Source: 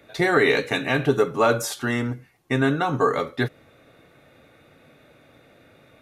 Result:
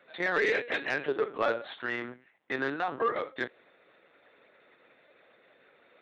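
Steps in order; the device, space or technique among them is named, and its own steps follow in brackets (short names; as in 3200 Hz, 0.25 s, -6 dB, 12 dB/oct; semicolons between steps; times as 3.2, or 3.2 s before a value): talking toy (LPC vocoder at 8 kHz pitch kept; HPF 350 Hz 12 dB/oct; bell 1800 Hz +4.5 dB 0.46 oct; soft clip -12 dBFS, distortion -17 dB); gain -6 dB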